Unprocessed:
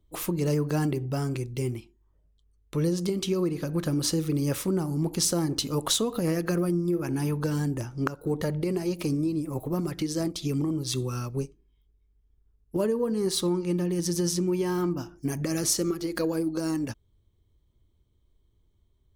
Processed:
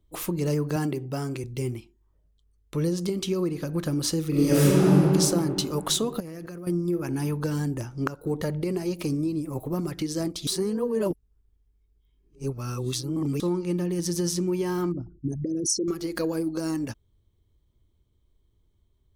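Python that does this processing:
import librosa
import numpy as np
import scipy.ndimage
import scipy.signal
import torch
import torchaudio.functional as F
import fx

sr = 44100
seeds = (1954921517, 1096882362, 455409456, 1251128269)

y = fx.highpass(x, sr, hz=140.0, slope=12, at=(0.76, 1.44))
y = fx.reverb_throw(y, sr, start_s=4.29, length_s=0.66, rt60_s=2.7, drr_db=-9.5)
y = fx.level_steps(y, sr, step_db=19, at=(6.2, 6.67))
y = fx.envelope_sharpen(y, sr, power=3.0, at=(14.92, 15.88))
y = fx.edit(y, sr, fx.reverse_span(start_s=10.47, length_s=2.93), tone=tone)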